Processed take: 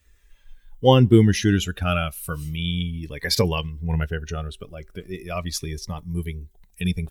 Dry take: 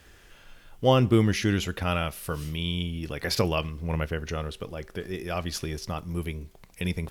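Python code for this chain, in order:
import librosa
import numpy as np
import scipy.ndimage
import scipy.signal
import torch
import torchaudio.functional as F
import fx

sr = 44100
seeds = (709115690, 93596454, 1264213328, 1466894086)

y = fx.bin_expand(x, sr, power=1.5)
y = fx.notch_cascade(y, sr, direction='falling', hz=0.38)
y = y * 10.0 ** (8.0 / 20.0)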